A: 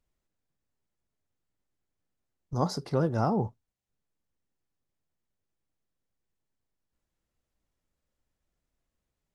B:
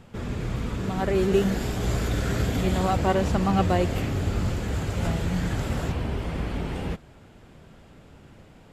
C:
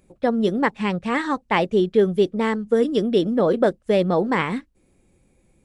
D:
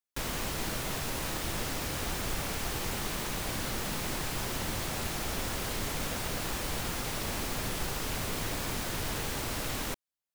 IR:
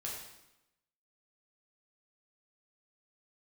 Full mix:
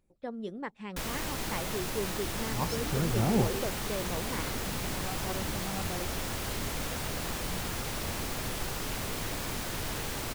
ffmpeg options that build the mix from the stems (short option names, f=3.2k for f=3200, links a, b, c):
-filter_complex "[0:a]aphaser=in_gain=1:out_gain=1:delay=1.1:decay=0.65:speed=0.58:type=triangular,volume=-7dB[a];[1:a]adelay=2200,volume=-17dB[b];[2:a]volume=-18dB[c];[3:a]adelay=800,volume=-1dB[d];[a][b][c][d]amix=inputs=4:normalize=0"